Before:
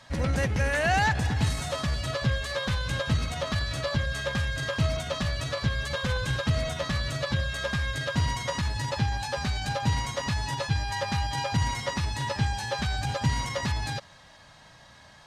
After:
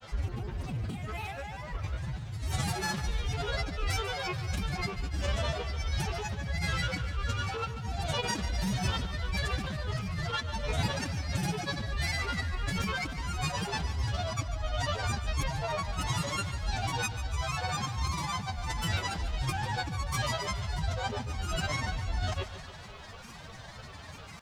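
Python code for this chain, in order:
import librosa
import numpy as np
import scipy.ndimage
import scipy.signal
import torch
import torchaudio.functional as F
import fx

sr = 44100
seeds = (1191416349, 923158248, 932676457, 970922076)

y = fx.over_compress(x, sr, threshold_db=-35.0, ratio=-1.0)
y = fx.low_shelf(y, sr, hz=220.0, db=6.0)
y = fx.stretch_vocoder(y, sr, factor=1.6)
y = fx.granulator(y, sr, seeds[0], grain_ms=100.0, per_s=20.0, spray_ms=100.0, spread_st=7)
y = fx.echo_crushed(y, sr, ms=144, feedback_pct=55, bits=11, wet_db=-12)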